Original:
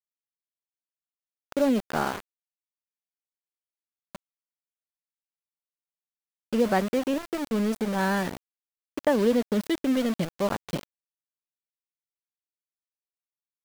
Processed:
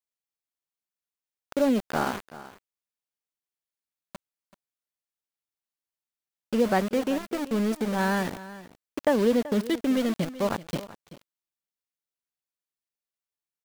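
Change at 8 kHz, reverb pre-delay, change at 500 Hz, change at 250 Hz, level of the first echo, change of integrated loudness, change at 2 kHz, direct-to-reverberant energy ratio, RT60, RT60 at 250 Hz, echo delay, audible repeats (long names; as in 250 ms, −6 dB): 0.0 dB, no reverb audible, 0.0 dB, 0.0 dB, −16.5 dB, 0.0 dB, 0.0 dB, no reverb audible, no reverb audible, no reverb audible, 382 ms, 1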